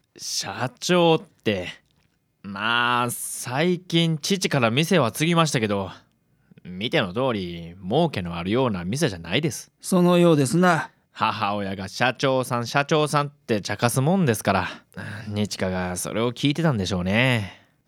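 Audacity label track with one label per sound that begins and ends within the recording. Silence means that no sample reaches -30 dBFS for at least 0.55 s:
2.450000	5.920000	sound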